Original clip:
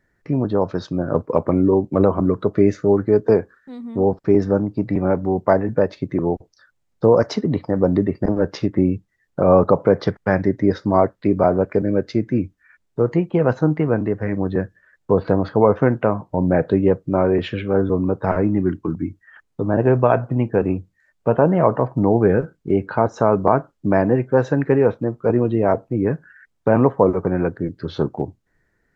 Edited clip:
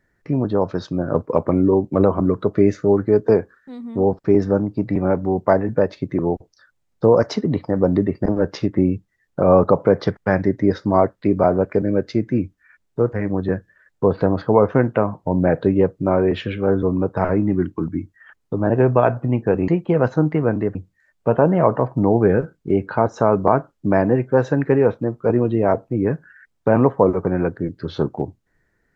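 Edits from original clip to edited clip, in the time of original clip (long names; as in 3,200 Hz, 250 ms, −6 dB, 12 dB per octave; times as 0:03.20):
0:13.13–0:14.20: move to 0:20.75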